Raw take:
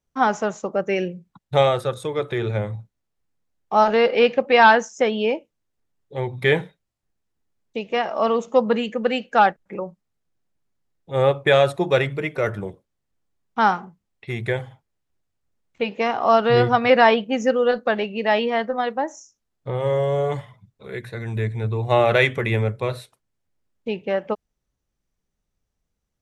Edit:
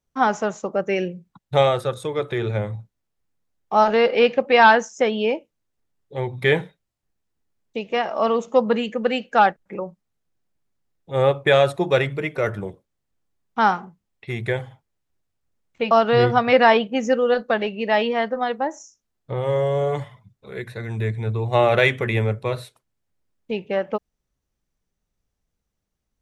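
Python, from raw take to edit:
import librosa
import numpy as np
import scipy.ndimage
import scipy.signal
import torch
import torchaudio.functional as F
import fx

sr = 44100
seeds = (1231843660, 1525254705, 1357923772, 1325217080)

y = fx.edit(x, sr, fx.cut(start_s=15.91, length_s=0.37), tone=tone)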